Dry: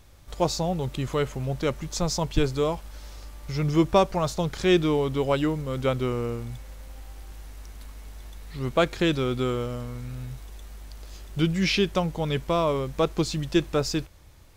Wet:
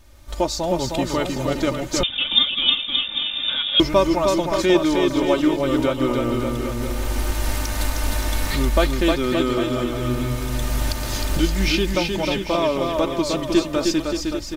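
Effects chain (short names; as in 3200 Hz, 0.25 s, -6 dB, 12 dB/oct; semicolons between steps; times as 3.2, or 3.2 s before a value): recorder AGC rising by 15 dB/s; comb 3.3 ms, depth 70%; bouncing-ball echo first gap 0.31 s, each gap 0.85×, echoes 5; 2.03–3.8 inverted band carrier 3600 Hz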